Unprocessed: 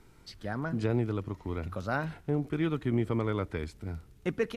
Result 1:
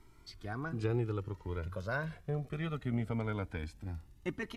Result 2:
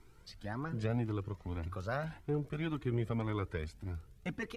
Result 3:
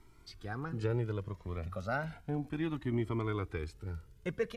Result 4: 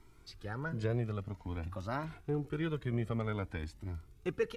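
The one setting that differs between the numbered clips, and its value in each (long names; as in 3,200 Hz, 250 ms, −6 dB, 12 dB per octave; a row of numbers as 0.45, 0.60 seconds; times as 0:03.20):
flanger whose copies keep moving one way, speed: 0.22, 1.8, 0.33, 0.51 Hertz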